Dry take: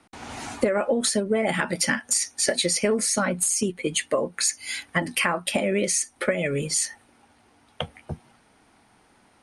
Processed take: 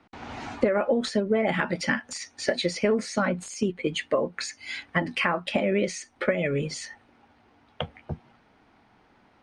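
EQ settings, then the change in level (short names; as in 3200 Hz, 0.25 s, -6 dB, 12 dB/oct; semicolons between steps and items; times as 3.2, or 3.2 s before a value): air absorption 170 m; 0.0 dB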